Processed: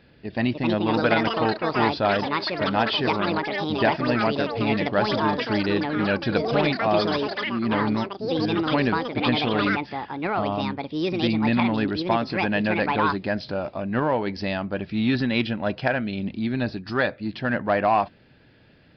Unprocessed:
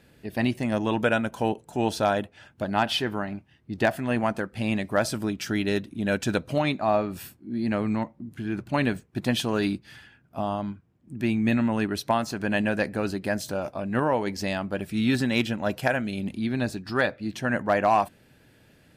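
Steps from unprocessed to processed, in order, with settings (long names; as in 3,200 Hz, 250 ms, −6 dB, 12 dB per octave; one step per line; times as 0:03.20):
in parallel at −11 dB: hard clipping −26.5 dBFS, distortion −6 dB
on the sum: delay with pitch and tempo change per echo 373 ms, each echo +6 semitones, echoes 3
downsampling to 11,025 Hz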